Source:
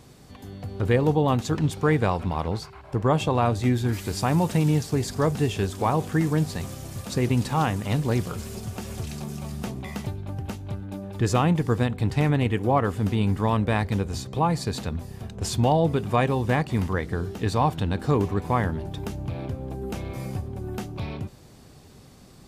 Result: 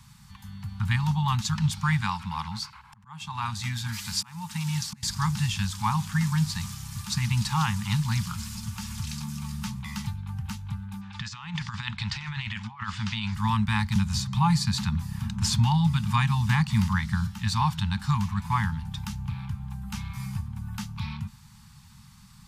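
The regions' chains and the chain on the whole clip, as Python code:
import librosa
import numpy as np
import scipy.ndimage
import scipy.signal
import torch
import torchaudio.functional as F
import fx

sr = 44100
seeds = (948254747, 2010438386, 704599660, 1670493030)

y = fx.chain(x, sr, fx.low_shelf(hz=150.0, db=-10.5),
    fx.auto_swell(attack_ms=549.0), at=(2.01, 5.03))
y = fx.chain(y, sr, fx.tilt_shelf(db=-8.5, hz=1100.0),
    fx.over_compress(threshold_db=-30.0, ratio=-0.5),
    fx.gaussian_blur(sigma=1.7), at=(11.01, 13.35))
y = fx.chain(y, sr, fx.peak_eq(hz=170.0, db=3.5, octaves=2.6),
    fx.band_squash(depth_pct=40), at=(13.95, 17.27))
y = scipy.signal.sosfilt(scipy.signal.cheby1(5, 1.0, [220.0, 850.0], 'bandstop', fs=sr, output='sos'), y)
y = fx.dynamic_eq(y, sr, hz=4900.0, q=0.98, threshold_db=-51.0, ratio=4.0, max_db=7)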